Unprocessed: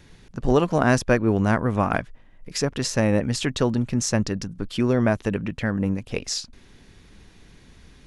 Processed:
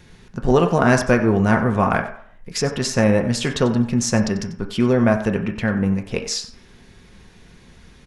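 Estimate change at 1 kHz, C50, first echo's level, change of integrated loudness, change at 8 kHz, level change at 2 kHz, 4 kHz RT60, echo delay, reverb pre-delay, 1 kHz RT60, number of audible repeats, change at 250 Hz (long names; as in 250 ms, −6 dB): +4.5 dB, 9.5 dB, −15.0 dB, +4.0 dB, +2.5 dB, +4.5 dB, 0.60 s, 93 ms, 3 ms, 0.65 s, 1, +4.0 dB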